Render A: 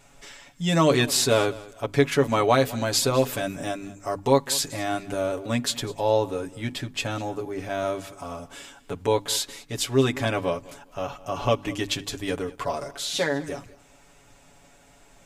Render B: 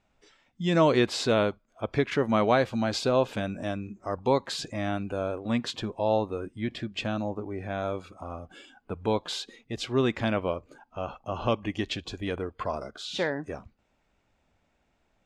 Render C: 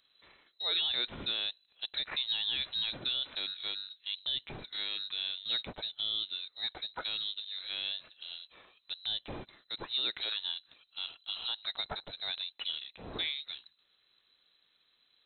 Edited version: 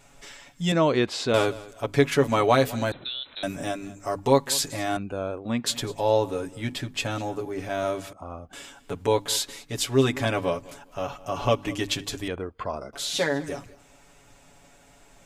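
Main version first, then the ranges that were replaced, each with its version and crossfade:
A
0.72–1.34 from B
2.92–3.43 from C
4.97–5.66 from B
8.13–8.53 from B
12.28–12.93 from B

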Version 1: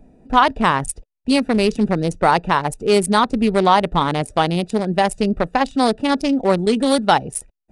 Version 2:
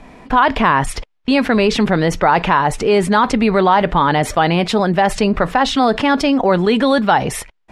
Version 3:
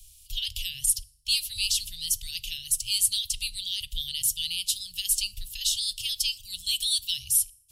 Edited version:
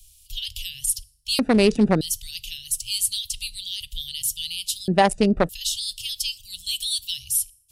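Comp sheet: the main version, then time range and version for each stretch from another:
3
1.39–2.01 from 1
4.88–5.49 from 1
not used: 2

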